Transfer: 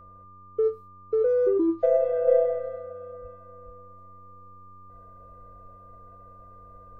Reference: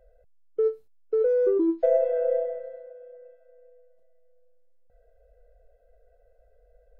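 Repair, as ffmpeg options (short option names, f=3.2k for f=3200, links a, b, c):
-filter_complex "[0:a]bandreject=f=94.8:t=h:w=4,bandreject=f=189.6:t=h:w=4,bandreject=f=284.4:t=h:w=4,bandreject=f=379.2:t=h:w=4,bandreject=f=474:t=h:w=4,bandreject=f=568.8:t=h:w=4,bandreject=f=1.2k:w=30,asplit=3[a][b][c];[a]afade=t=out:st=3.21:d=0.02[d];[b]highpass=f=140:w=0.5412,highpass=f=140:w=1.3066,afade=t=in:st=3.21:d=0.02,afade=t=out:st=3.33:d=0.02[e];[c]afade=t=in:st=3.33:d=0.02[f];[d][e][f]amix=inputs=3:normalize=0,asplit=3[g][h][i];[g]afade=t=out:st=3.65:d=0.02[j];[h]highpass=f=140:w=0.5412,highpass=f=140:w=1.3066,afade=t=in:st=3.65:d=0.02,afade=t=out:st=3.77:d=0.02[k];[i]afade=t=in:st=3.77:d=0.02[l];[j][k][l]amix=inputs=3:normalize=0,asetnsamples=n=441:p=0,asendcmd='2.27 volume volume -5.5dB',volume=0dB"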